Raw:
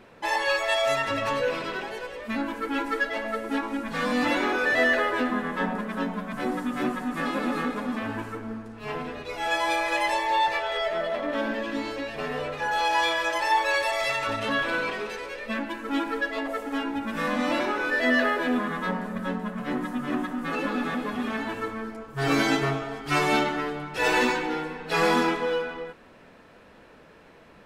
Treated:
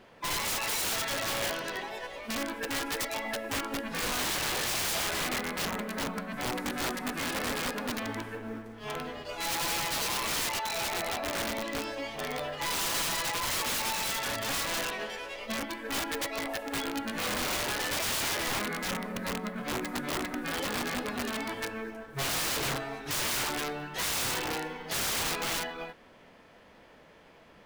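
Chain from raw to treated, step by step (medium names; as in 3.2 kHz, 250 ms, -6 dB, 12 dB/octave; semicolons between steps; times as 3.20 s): formant shift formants +3 st; short-mantissa float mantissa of 4-bit; integer overflow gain 22 dB; trim -4 dB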